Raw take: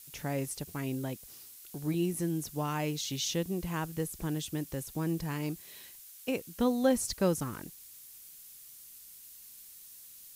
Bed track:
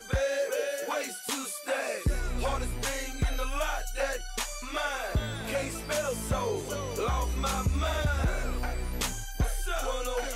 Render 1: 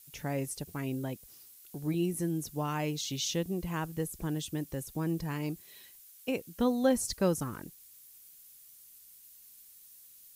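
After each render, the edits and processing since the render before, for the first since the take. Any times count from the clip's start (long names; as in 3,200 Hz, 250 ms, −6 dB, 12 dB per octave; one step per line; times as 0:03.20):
broadband denoise 6 dB, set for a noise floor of −52 dBFS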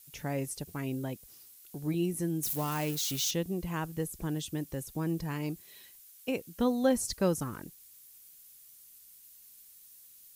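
0:02.43–0:03.31: spike at every zero crossing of −29.5 dBFS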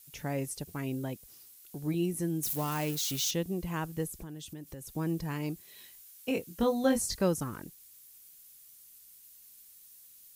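0:04.19–0:04.86: downward compressor 5 to 1, threshold −40 dBFS
0:05.76–0:07.22: double-tracking delay 22 ms −4 dB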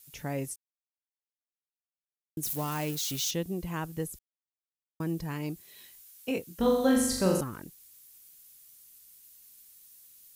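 0:00.56–0:02.37: silence
0:04.19–0:05.00: silence
0:06.59–0:07.41: flutter between parallel walls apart 7.3 metres, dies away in 0.81 s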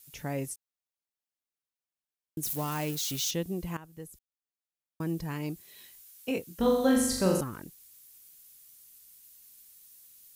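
0:03.77–0:05.11: fade in, from −16 dB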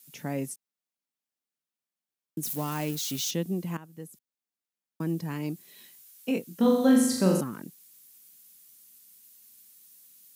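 high-pass filter 130 Hz 24 dB per octave
parametric band 220 Hz +6.5 dB 0.86 octaves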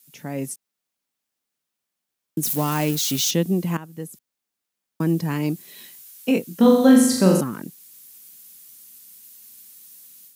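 automatic gain control gain up to 9 dB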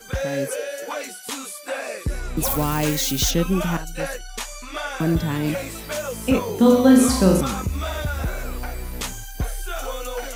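mix in bed track +2 dB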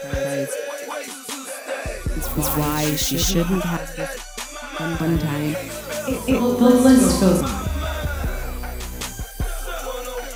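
backwards echo 208 ms −6.5 dB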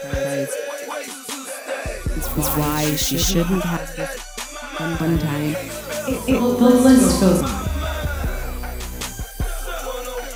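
level +1 dB
brickwall limiter −2 dBFS, peak gain reduction 1 dB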